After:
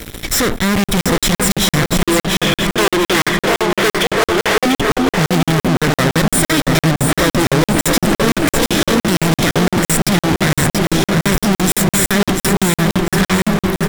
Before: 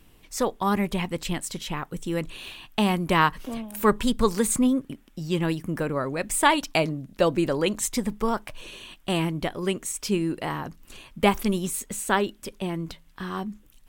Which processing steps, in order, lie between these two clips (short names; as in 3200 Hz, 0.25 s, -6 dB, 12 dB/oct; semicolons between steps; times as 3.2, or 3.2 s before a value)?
minimum comb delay 0.55 ms; 2.02–4.66 brick-wall FIR band-pass 300–3600 Hz; dark delay 0.332 s, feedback 85%, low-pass 2200 Hz, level -19.5 dB; tube stage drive 30 dB, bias 0.7; fuzz box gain 52 dB, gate -60 dBFS; feedback echo 0.695 s, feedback 42%, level -5.5 dB; crackling interface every 0.17 s, samples 2048, zero, from 0.84